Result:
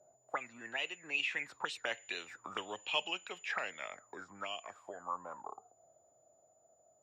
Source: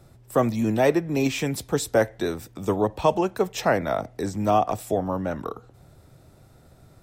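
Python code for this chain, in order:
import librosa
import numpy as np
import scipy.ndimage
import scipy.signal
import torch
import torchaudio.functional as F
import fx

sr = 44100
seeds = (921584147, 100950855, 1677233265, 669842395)

y = fx.doppler_pass(x, sr, speed_mps=19, closest_m=14.0, pass_at_s=2.55)
y = fx.high_shelf(y, sr, hz=9500.0, db=-11.5)
y = y + 10.0 ** (-45.0 / 20.0) * np.sin(2.0 * np.pi * 7000.0 * np.arange(len(y)) / sr)
y = fx.auto_wah(y, sr, base_hz=570.0, top_hz=2900.0, q=11.0, full_db=-25.0, direction='up')
y = y * 10.0 ** (14.5 / 20.0)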